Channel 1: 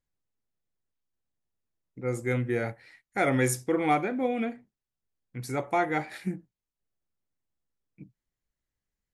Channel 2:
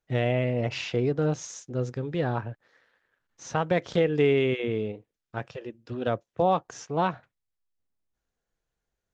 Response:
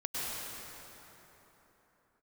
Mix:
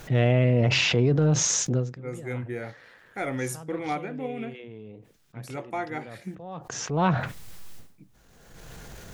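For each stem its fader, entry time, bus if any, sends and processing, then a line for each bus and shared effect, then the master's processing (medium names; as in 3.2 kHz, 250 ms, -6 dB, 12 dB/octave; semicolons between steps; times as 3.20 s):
-5.5 dB, 0.00 s, no send, none
-0.5 dB, 0.00 s, no send, peaking EQ 150 Hz +6.5 dB 1.1 oct; transient shaper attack -5 dB, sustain +4 dB; level flattener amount 70%; auto duck -21 dB, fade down 0.20 s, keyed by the first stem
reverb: none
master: none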